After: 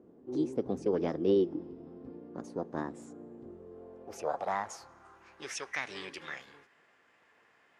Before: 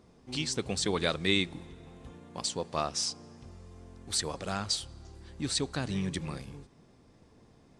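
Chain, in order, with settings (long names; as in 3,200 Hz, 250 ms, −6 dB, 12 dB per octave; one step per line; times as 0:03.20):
formants moved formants +6 semitones
band-pass filter sweep 300 Hz → 1,900 Hz, 0:03.30–0:05.65
level +8.5 dB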